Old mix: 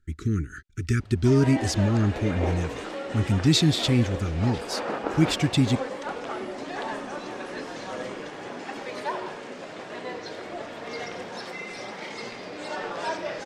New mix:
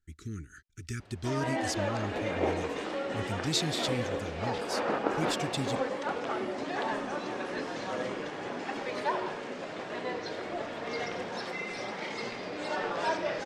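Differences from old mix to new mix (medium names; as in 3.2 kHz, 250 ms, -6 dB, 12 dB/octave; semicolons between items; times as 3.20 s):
speech: add pre-emphasis filter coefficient 0.8; master: add treble shelf 9.4 kHz -10.5 dB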